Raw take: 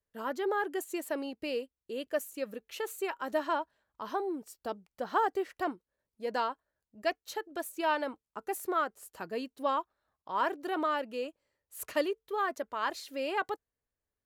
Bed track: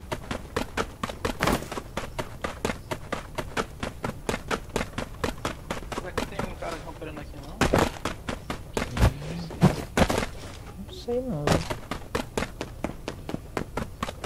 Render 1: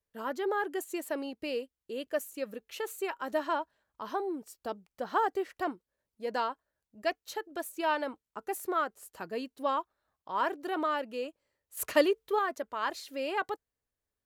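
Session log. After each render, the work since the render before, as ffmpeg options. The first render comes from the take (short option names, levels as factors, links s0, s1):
-filter_complex "[0:a]asettb=1/sr,asplit=3[s0][s1][s2];[s0]atrim=end=11.774[s3];[s1]atrim=start=11.77:end=12.39,asetpts=PTS-STARTPTS,afade=t=in:d=0.004:c=qsin,afade=t=out:st=0.616:d=0.004:c=qsin,acontrast=46[s4];[s2]atrim=start=12.386[s5];[s3][s4]acrossfade=d=0.004:c1=hsin:c2=qsin[s6];[s6][s5]acrossfade=d=0.004:c1=qsin:c2=hsin"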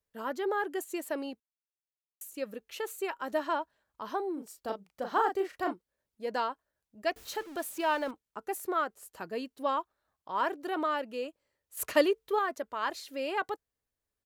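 -filter_complex "[0:a]asplit=3[s0][s1][s2];[s0]afade=t=out:st=4.36:d=0.02[s3];[s1]asplit=2[s4][s5];[s5]adelay=36,volume=0.531[s6];[s4][s6]amix=inputs=2:normalize=0,afade=t=in:st=4.36:d=0.02,afade=t=out:st=5.72:d=0.02[s7];[s2]afade=t=in:st=5.72:d=0.02[s8];[s3][s7][s8]amix=inputs=3:normalize=0,asettb=1/sr,asplit=3[s9][s10][s11];[s9]atrim=end=7.164[s12];[s10]atrim=start=7.16:end=8.11,asetpts=PTS-STARTPTS,afade=t=in:d=0.004:c=qsin,afade=t=out:st=0.946:d=0.004:c=qsin,aeval=exprs='val(0)+0.5*0.00596*sgn(val(0))':c=same[s13];[s11]atrim=start=8.106[s14];[s12][s13]acrossfade=d=0.004:c1=hsin:c2=qsin[s15];[s15][s14]acrossfade=d=0.004:c1=qsin:c2=hsin,asplit=3[s16][s17][s18];[s16]atrim=end=1.4,asetpts=PTS-STARTPTS,afade=t=out:st=1.396:d=0.004:c=hsin[s19];[s17]atrim=start=1.4:end=2.21,asetpts=PTS-STARTPTS,volume=0[s20];[s18]atrim=start=2.21,asetpts=PTS-STARTPTS,afade=t=in:d=0.004:c=hsin[s21];[s19][s20][s21]concat=n=3:v=0:a=1"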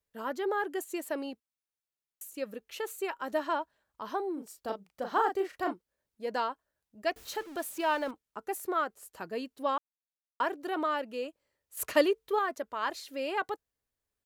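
-filter_complex "[0:a]asplit=3[s0][s1][s2];[s0]atrim=end=9.78,asetpts=PTS-STARTPTS,afade=t=out:st=9.776:d=0.004:c=hsin[s3];[s1]atrim=start=9.78:end=10.4,asetpts=PTS-STARTPTS,volume=0[s4];[s2]atrim=start=10.4,asetpts=PTS-STARTPTS,afade=t=in:d=0.004:c=hsin[s5];[s3][s4][s5]concat=n=3:v=0:a=1"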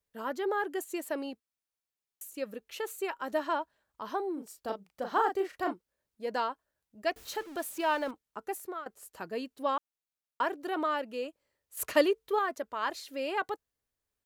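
-filter_complex "[0:a]asplit=2[s0][s1];[s0]atrim=end=8.86,asetpts=PTS-STARTPTS,afade=t=out:st=8.45:d=0.41:silence=0.149624[s2];[s1]atrim=start=8.86,asetpts=PTS-STARTPTS,afade=t=in:d=0.004:c=hsin:silence=0.149624[s3];[s2][s3]concat=n=2:v=0:a=1"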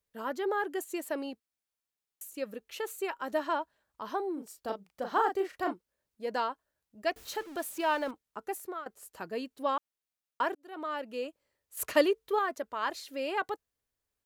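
-filter_complex "[0:a]asplit=2[s0][s1];[s0]atrim=end=10.55,asetpts=PTS-STARTPTS,afade=t=out:st=10.546:d=0.004:c=hsin[s2];[s1]atrim=start=10.55,asetpts=PTS-STARTPTS,afade=t=in:d=0.63[s3];[s2][s3]concat=n=2:v=0:a=1"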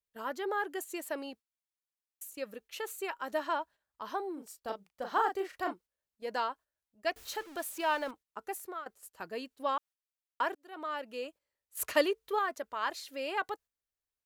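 -af "agate=range=0.398:threshold=0.00316:ratio=16:detection=peak,equalizer=f=210:w=0.41:g=-5.5"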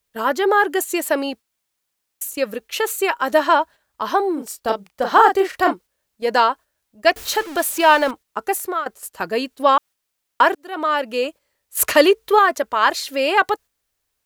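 -af "acontrast=86,alimiter=level_in=3.35:limit=0.891:release=50:level=0:latency=1"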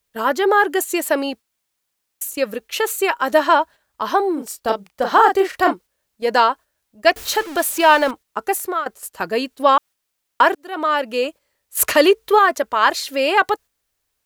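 -af "volume=1.12,alimiter=limit=0.794:level=0:latency=1"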